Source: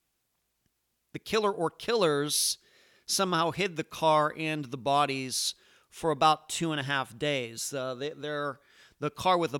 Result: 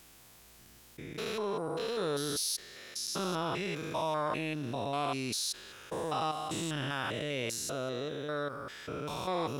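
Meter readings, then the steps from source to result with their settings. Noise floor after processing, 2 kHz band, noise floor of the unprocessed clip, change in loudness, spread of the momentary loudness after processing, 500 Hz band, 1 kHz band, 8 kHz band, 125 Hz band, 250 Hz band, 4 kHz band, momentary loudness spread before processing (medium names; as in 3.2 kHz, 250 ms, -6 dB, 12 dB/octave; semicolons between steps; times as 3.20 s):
-57 dBFS, -5.5 dB, -78 dBFS, -6.0 dB, 8 LU, -5.5 dB, -7.5 dB, -4.5 dB, -2.5 dB, -3.5 dB, -5.0 dB, 11 LU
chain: spectrogram pixelated in time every 200 ms; in parallel at -10.5 dB: hard clipper -33 dBFS, distortion -6 dB; on the sum: level flattener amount 50%; trim -6 dB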